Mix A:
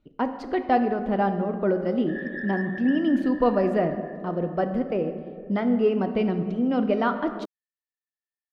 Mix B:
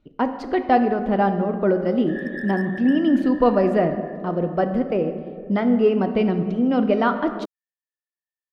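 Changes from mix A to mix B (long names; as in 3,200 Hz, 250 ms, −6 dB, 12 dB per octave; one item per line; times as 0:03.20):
speech +4.0 dB
background: remove high-frequency loss of the air 170 metres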